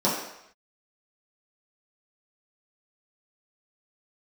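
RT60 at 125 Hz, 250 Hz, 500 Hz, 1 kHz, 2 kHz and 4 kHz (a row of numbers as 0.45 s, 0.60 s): 0.60 s, 0.65 s, 0.75 s, 0.80 s, 0.80 s, 0.75 s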